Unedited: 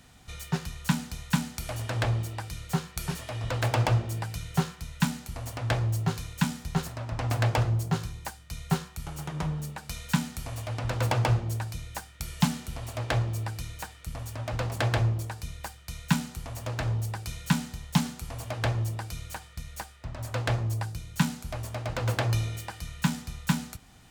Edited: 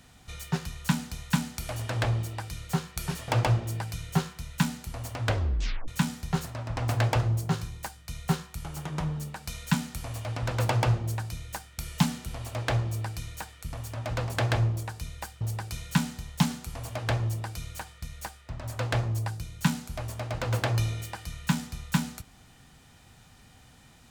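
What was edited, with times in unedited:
0:03.28–0:03.70: remove
0:05.67: tape stop 0.63 s
0:15.83–0:16.96: remove

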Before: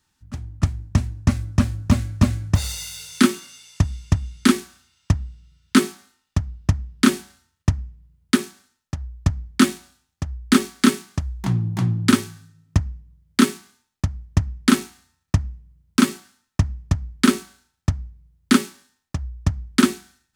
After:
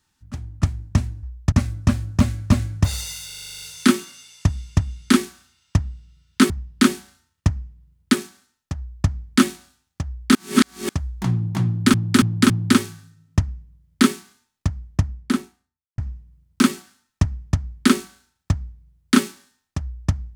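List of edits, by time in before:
0:02.97: stutter 0.04 s, 10 plays
0:05.85–0:06.72: remove
0:09.01–0:09.30: duplicate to 0:01.23
0:10.57–0:11.11: reverse
0:11.88–0:12.16: repeat, 4 plays
0:14.16–0:15.36: fade out and dull

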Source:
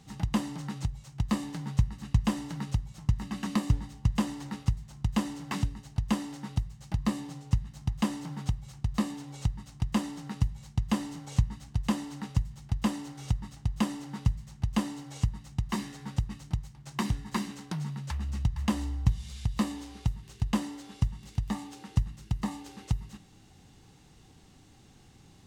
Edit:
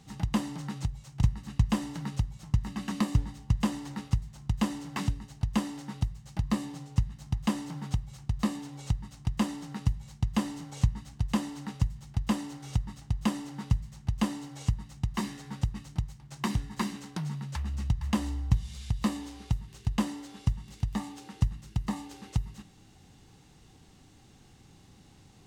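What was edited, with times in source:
0:01.23–0:01.78: remove

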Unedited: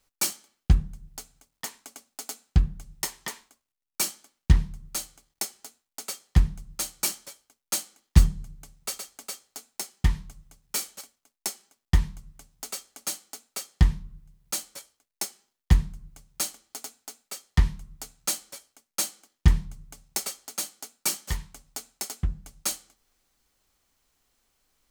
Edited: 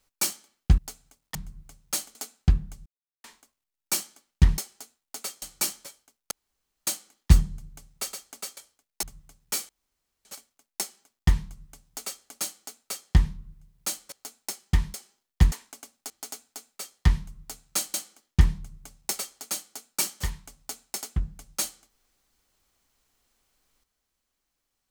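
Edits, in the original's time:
0:00.78–0:01.08: remove
0:01.65–0:02.23: swap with 0:15.82–0:16.62
0:02.94–0:03.32: silence
0:04.66–0:05.42: remove
0:06.26–0:06.84: remove
0:07.73: splice in room tone 0.56 s
0:09.43–0:10.25: swap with 0:14.78–0:15.24
0:10.91: splice in room tone 0.56 s
0:18.46–0:19.01: remove

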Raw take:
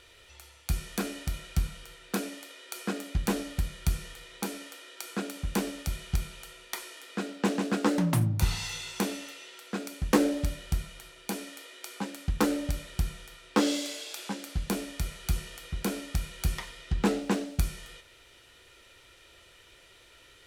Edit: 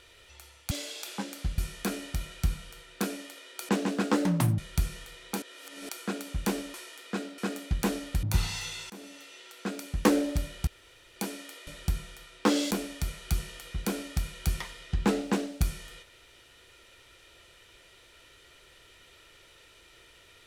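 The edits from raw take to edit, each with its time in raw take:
0:02.82–0:03.67: swap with 0:07.42–0:08.31
0:04.51–0:04.98: reverse
0:05.83–0:06.78: remove
0:08.98–0:09.85: fade in equal-power, from −22.5 dB
0:10.75–0:11.24: fill with room tone
0:11.75–0:12.78: remove
0:13.82–0:14.69: move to 0:00.71

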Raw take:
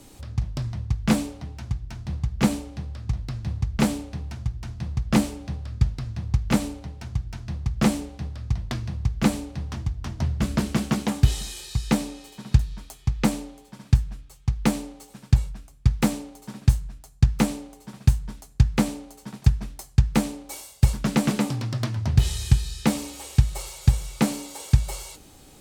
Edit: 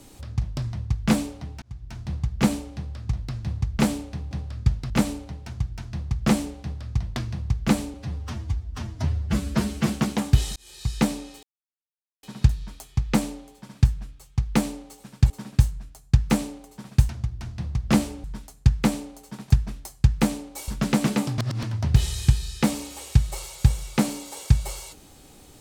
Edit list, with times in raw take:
0:01.62–0:01.97: fade in
0:04.31–0:05.46: move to 0:18.18
0:06.05–0:06.45: remove
0:09.49–0:10.79: time-stretch 1.5×
0:11.46–0:11.81: fade in linear
0:12.33: splice in silence 0.80 s
0:15.40–0:16.39: remove
0:20.62–0:20.91: remove
0:21.61–0:21.86: reverse

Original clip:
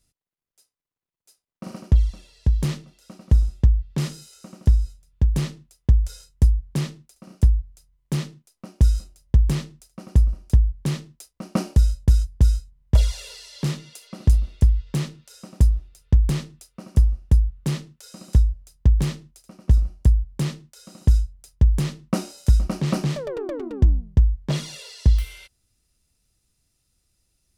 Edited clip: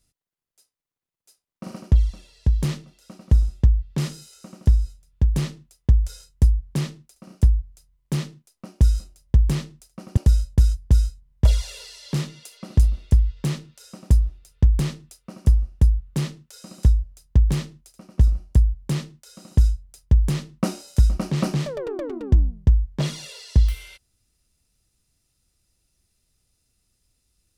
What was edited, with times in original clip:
0:10.17–0:11.67: remove

